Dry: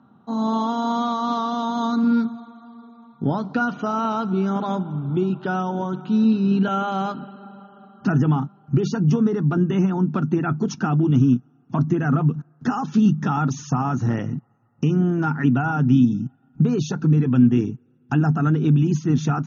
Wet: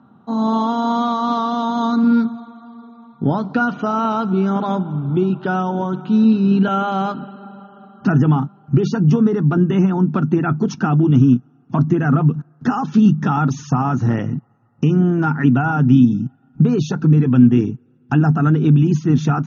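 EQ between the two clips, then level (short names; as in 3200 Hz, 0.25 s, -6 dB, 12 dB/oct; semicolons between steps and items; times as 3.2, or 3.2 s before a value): air absorption 72 m; +4.5 dB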